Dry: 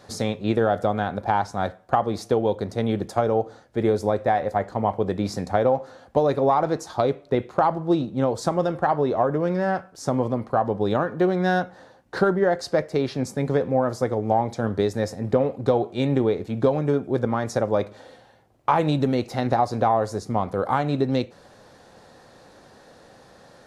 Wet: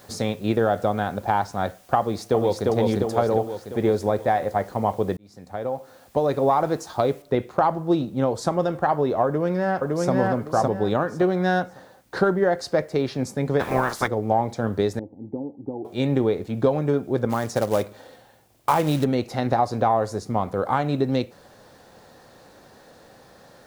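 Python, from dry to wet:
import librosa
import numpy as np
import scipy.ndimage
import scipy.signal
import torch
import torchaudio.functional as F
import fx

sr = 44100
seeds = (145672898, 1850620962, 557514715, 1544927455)

y = fx.echo_throw(x, sr, start_s=1.99, length_s=0.68, ms=350, feedback_pct=60, wet_db=-1.5)
y = fx.noise_floor_step(y, sr, seeds[0], at_s=7.22, before_db=-56, after_db=-66, tilt_db=0.0)
y = fx.echo_throw(y, sr, start_s=9.25, length_s=0.86, ms=560, feedback_pct=25, wet_db=-1.0)
y = fx.spec_clip(y, sr, under_db=27, at=(13.59, 14.06), fade=0.02)
y = fx.formant_cascade(y, sr, vowel='u', at=(14.99, 15.85))
y = fx.quant_float(y, sr, bits=2, at=(17.29, 19.03), fade=0.02)
y = fx.edit(y, sr, fx.fade_in_span(start_s=5.17, length_s=1.28), tone=tone)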